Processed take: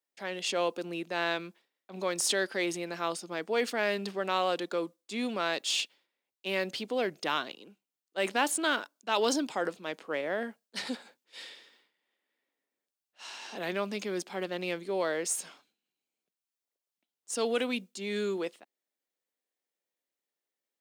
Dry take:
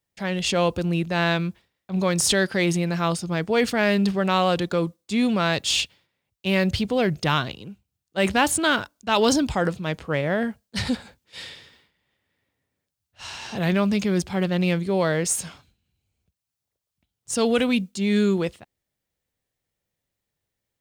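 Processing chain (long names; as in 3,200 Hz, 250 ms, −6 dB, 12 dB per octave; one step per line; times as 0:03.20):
high-pass filter 270 Hz 24 dB per octave
level −7.5 dB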